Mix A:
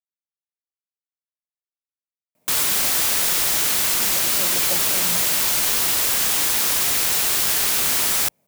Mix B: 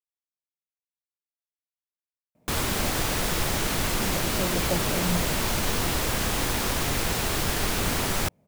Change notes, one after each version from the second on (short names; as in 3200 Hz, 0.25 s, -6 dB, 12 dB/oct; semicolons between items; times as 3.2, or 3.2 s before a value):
master: add tilt -3.5 dB/oct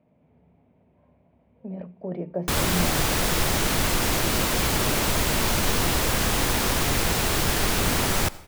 speech: entry -2.35 s; reverb: on, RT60 0.75 s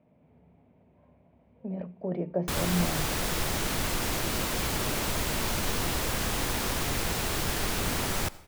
background -6.5 dB